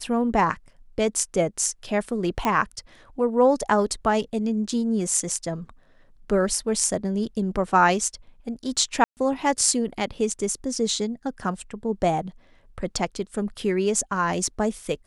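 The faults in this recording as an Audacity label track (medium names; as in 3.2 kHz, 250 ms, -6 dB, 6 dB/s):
2.450000	2.450000	pop -10 dBFS
9.040000	9.170000	dropout 129 ms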